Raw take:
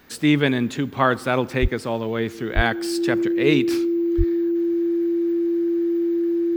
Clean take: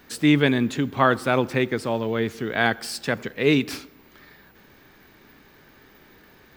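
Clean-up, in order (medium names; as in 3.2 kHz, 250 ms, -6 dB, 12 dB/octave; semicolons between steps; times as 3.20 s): band-stop 340 Hz, Q 30; 1.61–1.73 s: high-pass 140 Hz 24 dB/octave; 2.55–2.67 s: high-pass 140 Hz 24 dB/octave; 4.17–4.29 s: high-pass 140 Hz 24 dB/octave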